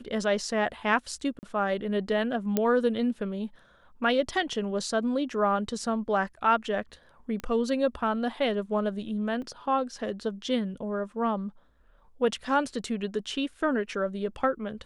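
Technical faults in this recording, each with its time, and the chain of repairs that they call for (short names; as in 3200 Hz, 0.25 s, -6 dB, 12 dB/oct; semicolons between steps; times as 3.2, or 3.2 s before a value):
1.39–1.43 gap 39 ms
2.57 pop -11 dBFS
7.4 pop -22 dBFS
9.42 gap 2.9 ms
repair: de-click; interpolate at 1.39, 39 ms; interpolate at 9.42, 2.9 ms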